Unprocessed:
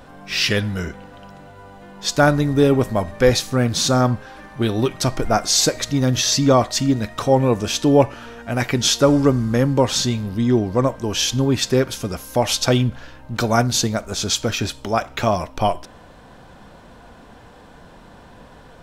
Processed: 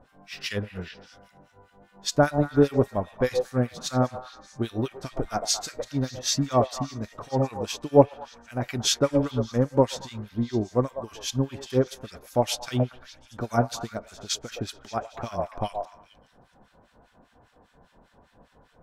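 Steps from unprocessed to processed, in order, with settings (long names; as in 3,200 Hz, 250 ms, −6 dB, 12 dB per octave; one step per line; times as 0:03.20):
echo through a band-pass that steps 115 ms, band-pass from 640 Hz, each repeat 0.7 octaves, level −3.5 dB
two-band tremolo in antiphase 5 Hz, depth 100%, crossover 1,300 Hz
expander for the loud parts 1.5 to 1, over −30 dBFS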